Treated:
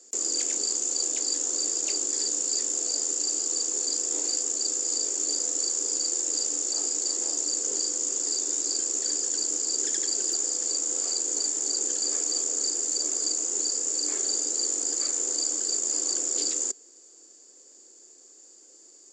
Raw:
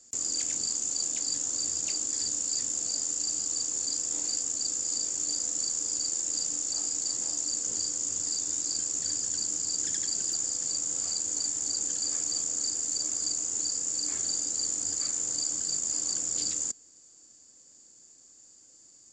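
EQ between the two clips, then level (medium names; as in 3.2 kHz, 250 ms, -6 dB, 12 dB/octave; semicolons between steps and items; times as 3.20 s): resonant high-pass 390 Hz, resonance Q 3.4; +3.0 dB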